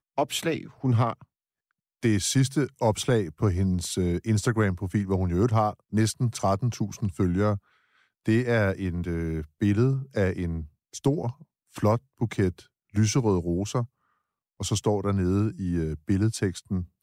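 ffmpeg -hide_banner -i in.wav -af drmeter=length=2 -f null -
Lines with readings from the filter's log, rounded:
Channel 1: DR: 9.2
Overall DR: 9.2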